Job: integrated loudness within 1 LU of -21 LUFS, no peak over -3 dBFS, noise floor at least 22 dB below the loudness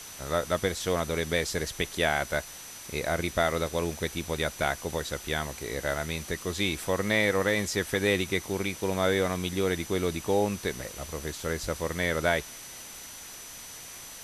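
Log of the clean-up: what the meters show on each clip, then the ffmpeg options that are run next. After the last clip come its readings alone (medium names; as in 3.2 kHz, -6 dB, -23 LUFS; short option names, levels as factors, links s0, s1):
steady tone 6 kHz; tone level -47 dBFS; noise floor -44 dBFS; noise floor target -51 dBFS; loudness -29.0 LUFS; peak level -10.0 dBFS; loudness target -21.0 LUFS
-> -af "bandreject=f=6000:w=30"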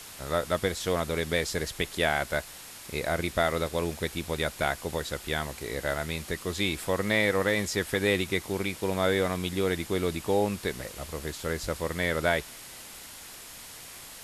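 steady tone not found; noise floor -45 dBFS; noise floor target -51 dBFS
-> -af "afftdn=nr=6:nf=-45"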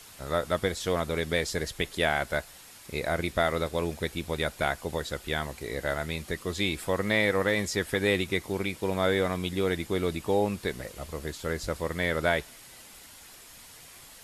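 noise floor -50 dBFS; noise floor target -52 dBFS
-> -af "afftdn=nr=6:nf=-50"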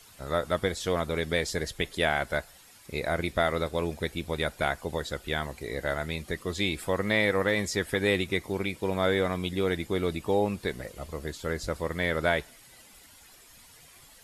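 noise floor -54 dBFS; loudness -29.5 LUFS; peak level -10.0 dBFS; loudness target -21.0 LUFS
-> -af "volume=2.66,alimiter=limit=0.708:level=0:latency=1"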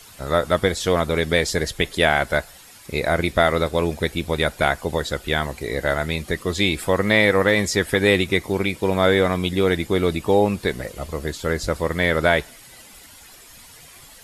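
loudness -21.0 LUFS; peak level -3.0 dBFS; noise floor -46 dBFS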